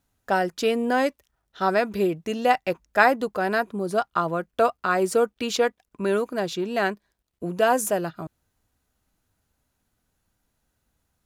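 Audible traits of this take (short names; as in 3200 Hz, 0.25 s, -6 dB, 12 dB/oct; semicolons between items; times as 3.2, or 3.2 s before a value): noise floor -77 dBFS; spectral tilt -4.0 dB/oct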